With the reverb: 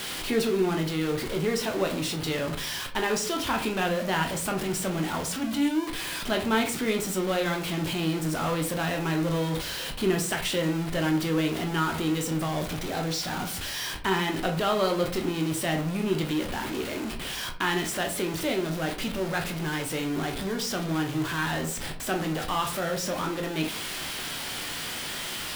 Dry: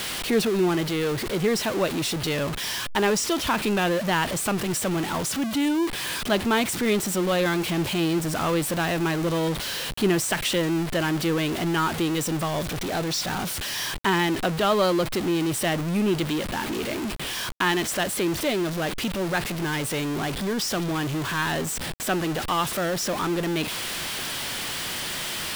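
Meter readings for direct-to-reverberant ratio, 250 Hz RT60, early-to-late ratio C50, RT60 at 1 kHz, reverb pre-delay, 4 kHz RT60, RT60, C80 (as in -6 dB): 2.5 dB, 0.55 s, 10.5 dB, 0.45 s, 13 ms, 0.25 s, 0.45 s, 15.0 dB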